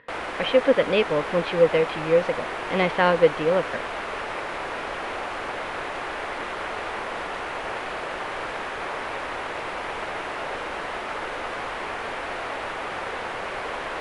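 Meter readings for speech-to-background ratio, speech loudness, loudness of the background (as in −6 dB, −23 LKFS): 8.0 dB, −22.5 LKFS, −30.5 LKFS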